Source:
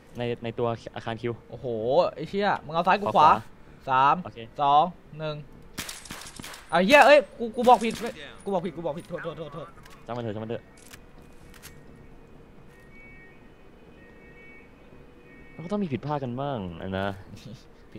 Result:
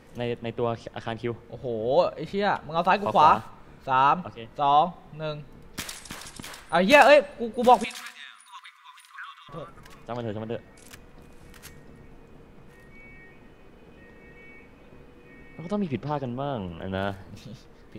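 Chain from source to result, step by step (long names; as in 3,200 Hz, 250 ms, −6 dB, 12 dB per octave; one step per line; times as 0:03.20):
0:07.84–0:09.49: linear-phase brick-wall high-pass 970 Hz
on a send: convolution reverb RT60 1.0 s, pre-delay 3 ms, DRR 22.5 dB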